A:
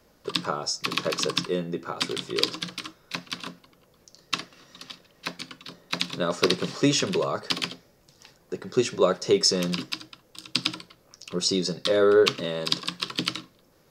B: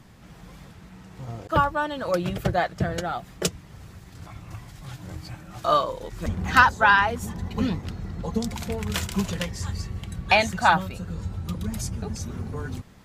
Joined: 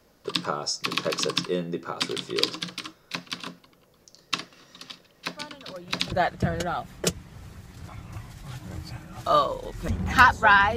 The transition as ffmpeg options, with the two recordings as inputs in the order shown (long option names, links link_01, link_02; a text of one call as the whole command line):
ffmpeg -i cue0.wav -i cue1.wav -filter_complex "[1:a]asplit=2[link_01][link_02];[0:a]apad=whole_dur=10.76,atrim=end=10.76,atrim=end=6.122[link_03];[link_02]atrim=start=2.498:end=7.14[link_04];[link_01]atrim=start=1.74:end=2.5,asetpts=PTS-STARTPTS,volume=-16.5dB,afade=type=in:duration=0.004:curve=hsin,afade=type=out:start_time=0.756:duration=0.004:curve=hsin,adelay=5360[link_05];[link_03][link_04]acrossfade=duration=0.004:curve1=hsin:curve2=hsin[link_06];[link_06][link_05]amix=inputs=2:normalize=0" out.wav